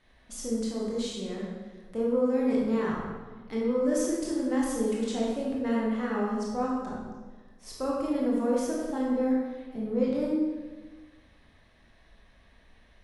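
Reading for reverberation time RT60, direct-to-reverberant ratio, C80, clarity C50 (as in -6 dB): 1.3 s, -4.5 dB, 2.5 dB, 0.0 dB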